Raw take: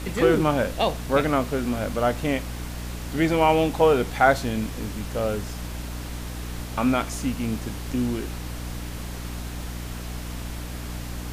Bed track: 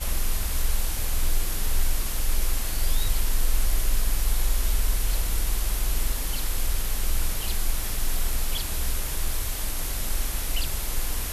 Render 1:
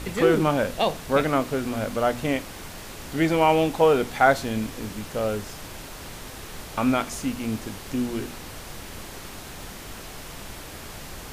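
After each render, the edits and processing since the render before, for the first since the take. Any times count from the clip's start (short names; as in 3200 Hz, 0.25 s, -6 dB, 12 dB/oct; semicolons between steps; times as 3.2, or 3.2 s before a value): de-hum 60 Hz, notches 5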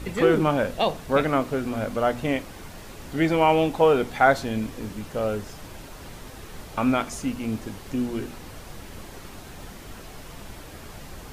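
denoiser 6 dB, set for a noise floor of -40 dBFS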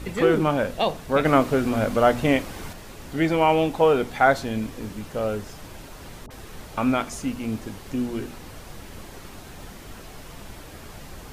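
1.25–2.73 gain +5 dB; 6.26–6.68 dispersion highs, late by 46 ms, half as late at 960 Hz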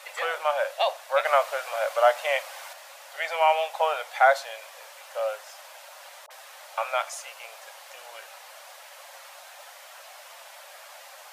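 Chebyshev high-pass 550 Hz, order 6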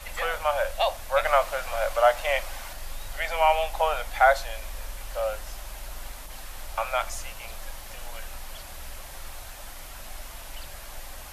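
add bed track -14 dB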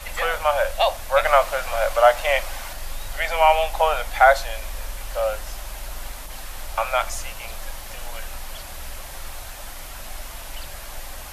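gain +5 dB; limiter -2 dBFS, peak gain reduction 0.5 dB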